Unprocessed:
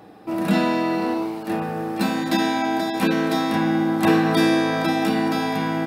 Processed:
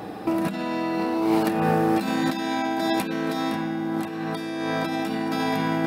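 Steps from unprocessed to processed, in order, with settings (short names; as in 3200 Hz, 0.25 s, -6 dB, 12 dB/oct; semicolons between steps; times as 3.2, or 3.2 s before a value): negative-ratio compressor -29 dBFS, ratio -1; gain +3.5 dB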